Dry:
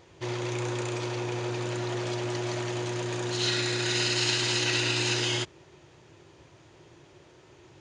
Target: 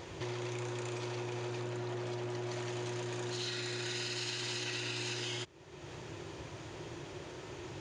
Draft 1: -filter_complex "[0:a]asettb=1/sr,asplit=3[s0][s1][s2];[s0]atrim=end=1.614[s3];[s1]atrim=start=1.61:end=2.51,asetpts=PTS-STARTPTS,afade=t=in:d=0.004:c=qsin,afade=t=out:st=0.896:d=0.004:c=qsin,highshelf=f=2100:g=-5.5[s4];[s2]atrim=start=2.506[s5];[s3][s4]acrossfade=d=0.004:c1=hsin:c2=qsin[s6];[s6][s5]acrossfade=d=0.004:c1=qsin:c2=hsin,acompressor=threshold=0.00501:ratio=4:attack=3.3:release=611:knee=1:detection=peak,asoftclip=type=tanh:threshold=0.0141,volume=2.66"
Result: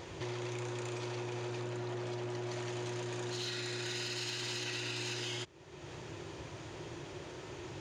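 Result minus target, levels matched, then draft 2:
saturation: distortion +11 dB
-filter_complex "[0:a]asettb=1/sr,asplit=3[s0][s1][s2];[s0]atrim=end=1.614[s3];[s1]atrim=start=1.61:end=2.51,asetpts=PTS-STARTPTS,afade=t=in:d=0.004:c=qsin,afade=t=out:st=0.896:d=0.004:c=qsin,highshelf=f=2100:g=-5.5[s4];[s2]atrim=start=2.506[s5];[s3][s4]acrossfade=d=0.004:c1=hsin:c2=qsin[s6];[s6][s5]acrossfade=d=0.004:c1=qsin:c2=hsin,acompressor=threshold=0.00501:ratio=4:attack=3.3:release=611:knee=1:detection=peak,asoftclip=type=tanh:threshold=0.0282,volume=2.66"

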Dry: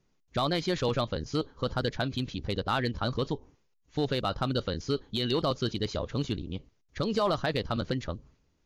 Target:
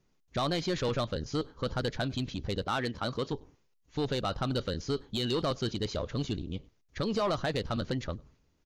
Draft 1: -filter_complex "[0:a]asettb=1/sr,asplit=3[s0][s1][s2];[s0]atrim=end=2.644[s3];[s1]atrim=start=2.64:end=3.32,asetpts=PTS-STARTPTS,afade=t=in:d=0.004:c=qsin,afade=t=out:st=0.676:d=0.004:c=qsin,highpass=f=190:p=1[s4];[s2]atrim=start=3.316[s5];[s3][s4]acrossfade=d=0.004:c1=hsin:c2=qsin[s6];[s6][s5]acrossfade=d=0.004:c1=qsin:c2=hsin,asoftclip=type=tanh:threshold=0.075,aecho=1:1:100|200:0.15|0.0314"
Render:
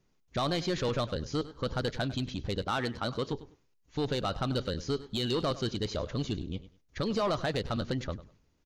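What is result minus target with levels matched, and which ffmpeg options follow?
echo-to-direct +11.5 dB
-filter_complex "[0:a]asettb=1/sr,asplit=3[s0][s1][s2];[s0]atrim=end=2.644[s3];[s1]atrim=start=2.64:end=3.32,asetpts=PTS-STARTPTS,afade=t=in:d=0.004:c=qsin,afade=t=out:st=0.676:d=0.004:c=qsin,highpass=f=190:p=1[s4];[s2]atrim=start=3.316[s5];[s3][s4]acrossfade=d=0.004:c1=hsin:c2=qsin[s6];[s6][s5]acrossfade=d=0.004:c1=qsin:c2=hsin,asoftclip=type=tanh:threshold=0.075,aecho=1:1:100:0.0398"

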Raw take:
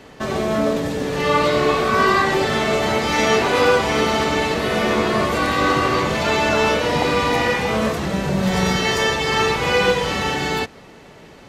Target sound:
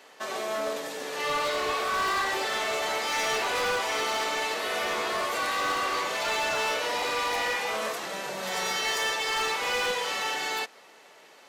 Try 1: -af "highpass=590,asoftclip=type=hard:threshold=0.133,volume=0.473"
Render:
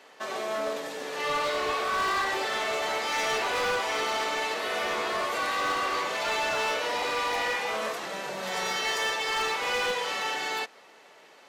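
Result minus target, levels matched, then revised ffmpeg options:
8 kHz band -2.5 dB
-af "highpass=590,highshelf=f=6400:g=6.5,asoftclip=type=hard:threshold=0.133,volume=0.473"

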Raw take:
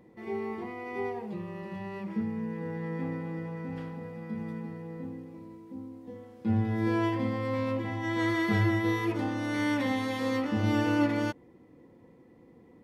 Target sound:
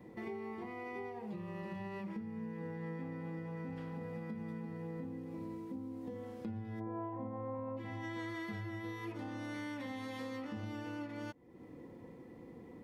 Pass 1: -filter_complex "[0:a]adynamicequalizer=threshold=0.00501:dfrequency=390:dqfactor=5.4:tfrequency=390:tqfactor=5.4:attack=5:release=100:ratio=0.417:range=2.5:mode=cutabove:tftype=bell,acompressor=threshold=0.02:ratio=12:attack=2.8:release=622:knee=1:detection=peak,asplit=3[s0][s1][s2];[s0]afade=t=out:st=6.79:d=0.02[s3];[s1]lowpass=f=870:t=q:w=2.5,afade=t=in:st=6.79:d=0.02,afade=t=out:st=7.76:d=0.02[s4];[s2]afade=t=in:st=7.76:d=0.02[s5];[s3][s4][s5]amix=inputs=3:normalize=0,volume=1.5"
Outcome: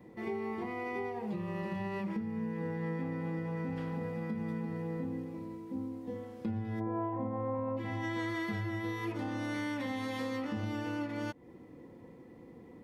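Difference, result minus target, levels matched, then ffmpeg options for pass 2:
compression: peak gain reduction -6.5 dB
-filter_complex "[0:a]adynamicequalizer=threshold=0.00501:dfrequency=390:dqfactor=5.4:tfrequency=390:tqfactor=5.4:attack=5:release=100:ratio=0.417:range=2.5:mode=cutabove:tftype=bell,acompressor=threshold=0.00891:ratio=12:attack=2.8:release=622:knee=1:detection=peak,asplit=3[s0][s1][s2];[s0]afade=t=out:st=6.79:d=0.02[s3];[s1]lowpass=f=870:t=q:w=2.5,afade=t=in:st=6.79:d=0.02,afade=t=out:st=7.76:d=0.02[s4];[s2]afade=t=in:st=7.76:d=0.02[s5];[s3][s4][s5]amix=inputs=3:normalize=0,volume=1.5"

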